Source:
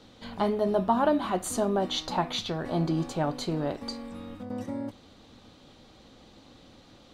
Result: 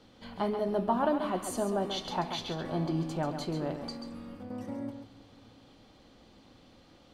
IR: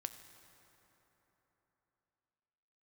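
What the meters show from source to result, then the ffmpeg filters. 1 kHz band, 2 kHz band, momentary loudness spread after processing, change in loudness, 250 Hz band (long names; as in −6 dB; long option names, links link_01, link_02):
−4.0 dB, −4.0 dB, 14 LU, −4.0 dB, −4.0 dB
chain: -filter_complex "[0:a]equalizer=frequency=6900:width_type=o:width=0.5:gain=-3.5,bandreject=frequency=3800:width=13,asplit=2[link_01][link_02];[1:a]atrim=start_sample=2205,adelay=136[link_03];[link_02][link_03]afir=irnorm=-1:irlink=0,volume=-5dB[link_04];[link_01][link_04]amix=inputs=2:normalize=0,volume=-4.5dB"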